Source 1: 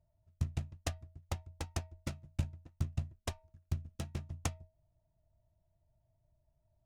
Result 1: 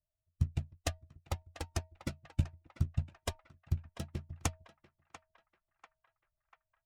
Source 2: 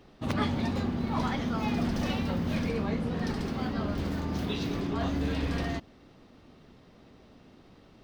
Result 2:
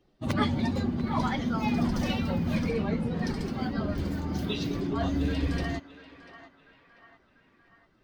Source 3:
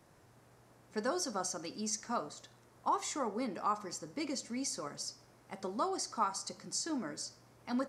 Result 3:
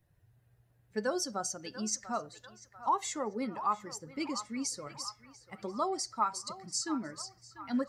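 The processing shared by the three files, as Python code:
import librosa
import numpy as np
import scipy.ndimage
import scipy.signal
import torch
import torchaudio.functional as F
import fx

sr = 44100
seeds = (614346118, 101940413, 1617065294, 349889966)

y = fx.bin_expand(x, sr, power=1.5)
y = fx.echo_banded(y, sr, ms=692, feedback_pct=58, hz=1400.0, wet_db=-11.5)
y = y * librosa.db_to_amplitude(4.5)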